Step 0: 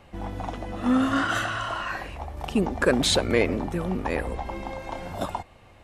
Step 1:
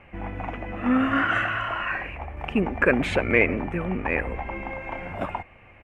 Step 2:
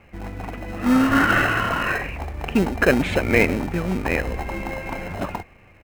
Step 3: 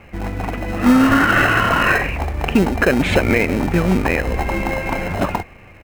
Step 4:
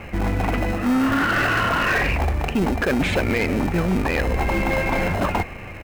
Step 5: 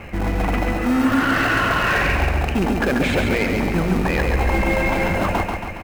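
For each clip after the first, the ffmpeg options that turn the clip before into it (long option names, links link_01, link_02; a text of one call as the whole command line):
ffmpeg -i in.wav -af "firequalizer=gain_entry='entry(1000,0);entry(2400,10);entry(3800,-18)':delay=0.05:min_phase=1" out.wav
ffmpeg -i in.wav -filter_complex "[0:a]dynaudnorm=framelen=240:gausssize=9:maxgain=11.5dB,asplit=2[link_01][link_02];[link_02]acrusher=samples=38:mix=1:aa=0.000001,volume=-6.5dB[link_03];[link_01][link_03]amix=inputs=2:normalize=0,volume=-2.5dB" out.wav
ffmpeg -i in.wav -af "alimiter=limit=-11.5dB:level=0:latency=1:release=257,volume=8dB" out.wav
ffmpeg -i in.wav -af "areverse,acompressor=threshold=-23dB:ratio=5,areverse,asoftclip=type=tanh:threshold=-21.5dB,volume=7.5dB" out.wav
ffmpeg -i in.wav -af "aecho=1:1:138|276|414|552|690|828|966:0.596|0.322|0.174|0.0938|0.0506|0.0274|0.0148" out.wav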